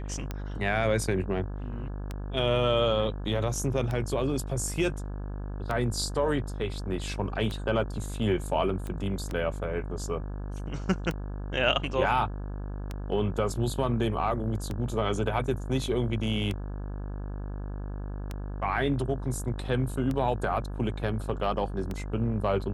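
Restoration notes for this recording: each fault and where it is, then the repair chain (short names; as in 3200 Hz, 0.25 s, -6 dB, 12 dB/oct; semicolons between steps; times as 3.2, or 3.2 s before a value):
buzz 50 Hz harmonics 34 -35 dBFS
tick 33 1/3 rpm -19 dBFS
8.87 pop -24 dBFS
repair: de-click; de-hum 50 Hz, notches 34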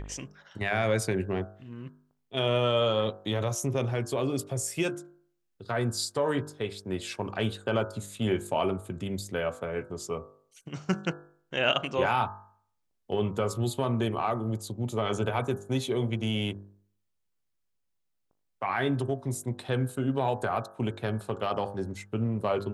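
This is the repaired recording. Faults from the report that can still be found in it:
8.87 pop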